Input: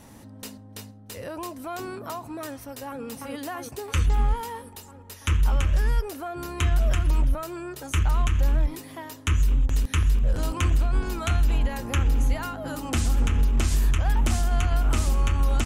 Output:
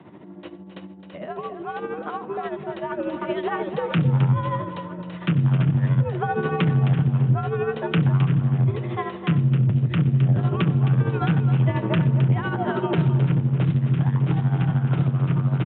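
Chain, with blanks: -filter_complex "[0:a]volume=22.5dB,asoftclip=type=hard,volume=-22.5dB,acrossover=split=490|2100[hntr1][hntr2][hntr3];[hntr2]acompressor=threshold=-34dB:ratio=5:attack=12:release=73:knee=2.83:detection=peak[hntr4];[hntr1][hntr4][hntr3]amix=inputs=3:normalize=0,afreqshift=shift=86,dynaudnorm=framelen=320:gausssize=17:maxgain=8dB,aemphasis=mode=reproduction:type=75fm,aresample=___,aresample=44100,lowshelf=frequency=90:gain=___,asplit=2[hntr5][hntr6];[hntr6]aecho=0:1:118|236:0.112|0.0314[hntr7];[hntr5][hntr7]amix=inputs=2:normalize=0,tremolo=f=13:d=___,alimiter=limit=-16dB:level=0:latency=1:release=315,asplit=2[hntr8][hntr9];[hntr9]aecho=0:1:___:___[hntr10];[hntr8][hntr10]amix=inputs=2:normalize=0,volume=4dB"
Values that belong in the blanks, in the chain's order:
8000, 11, 0.63, 264, 0.316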